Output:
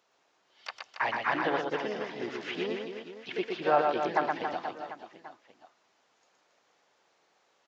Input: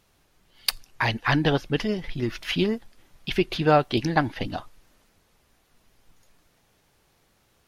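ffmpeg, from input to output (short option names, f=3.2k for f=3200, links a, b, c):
-filter_complex "[0:a]asplit=2[a][b];[b]asetrate=52444,aresample=44100,atempo=0.840896,volume=-9dB[c];[a][c]amix=inputs=2:normalize=0,aresample=16000,aresample=44100,acrossover=split=2600[d][e];[e]acompressor=threshold=-42dB:ratio=4:attack=1:release=60[f];[d][f]amix=inputs=2:normalize=0,asplit=2[g][h];[h]alimiter=limit=-14dB:level=0:latency=1:release=411,volume=-1.5dB[i];[g][i]amix=inputs=2:normalize=0,highpass=670,tiltshelf=f=970:g=5.5,aecho=1:1:120|276|478.8|742.4|1085:0.631|0.398|0.251|0.158|0.1,volume=-7dB"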